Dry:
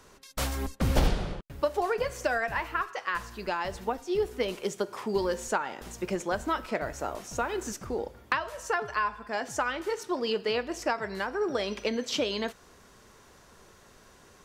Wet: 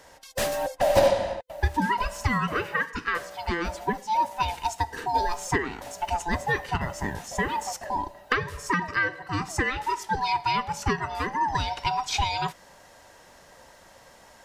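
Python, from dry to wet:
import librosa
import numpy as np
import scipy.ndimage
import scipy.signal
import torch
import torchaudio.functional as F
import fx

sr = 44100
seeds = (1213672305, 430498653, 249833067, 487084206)

y = fx.band_swap(x, sr, width_hz=500)
y = F.gain(torch.from_numpy(y), 3.5).numpy()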